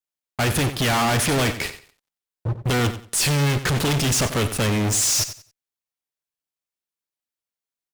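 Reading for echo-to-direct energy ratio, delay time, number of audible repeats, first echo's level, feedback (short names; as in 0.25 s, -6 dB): -12.5 dB, 91 ms, 2, -12.5 dB, 23%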